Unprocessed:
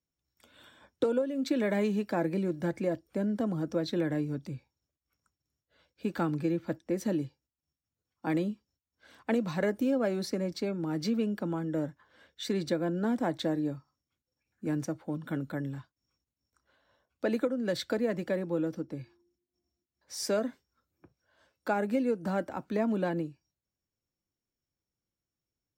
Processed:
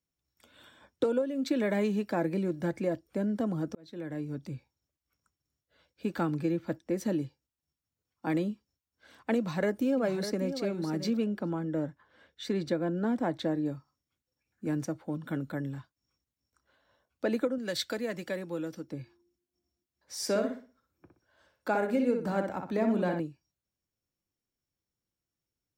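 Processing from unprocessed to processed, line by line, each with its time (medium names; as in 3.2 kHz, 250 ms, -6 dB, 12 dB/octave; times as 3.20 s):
3.75–4.53 s: fade in
9.37–10.56 s: echo throw 600 ms, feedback 10%, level -9.5 dB
11.24–13.66 s: treble shelf 4.9 kHz -8 dB
17.58–18.92 s: tilt shelf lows -5.5 dB, about 1.5 kHz
20.15–23.20 s: filtered feedback delay 61 ms, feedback 32%, low-pass 4 kHz, level -5 dB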